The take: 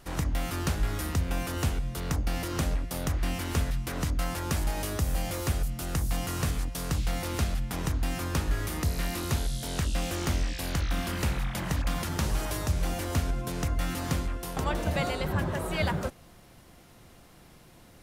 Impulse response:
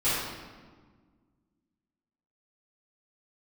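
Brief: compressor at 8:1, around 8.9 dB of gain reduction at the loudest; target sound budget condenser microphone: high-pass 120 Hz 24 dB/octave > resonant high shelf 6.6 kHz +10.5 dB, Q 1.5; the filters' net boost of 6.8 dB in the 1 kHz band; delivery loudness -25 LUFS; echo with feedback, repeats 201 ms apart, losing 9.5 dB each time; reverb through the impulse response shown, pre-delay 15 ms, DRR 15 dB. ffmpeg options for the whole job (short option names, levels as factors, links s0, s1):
-filter_complex "[0:a]equalizer=f=1000:t=o:g=9,acompressor=threshold=0.0282:ratio=8,aecho=1:1:201|402|603|804:0.335|0.111|0.0365|0.012,asplit=2[s0][s1];[1:a]atrim=start_sample=2205,adelay=15[s2];[s1][s2]afir=irnorm=-1:irlink=0,volume=0.0422[s3];[s0][s3]amix=inputs=2:normalize=0,highpass=f=120:w=0.5412,highpass=f=120:w=1.3066,highshelf=f=6600:t=q:w=1.5:g=10.5,volume=2.66"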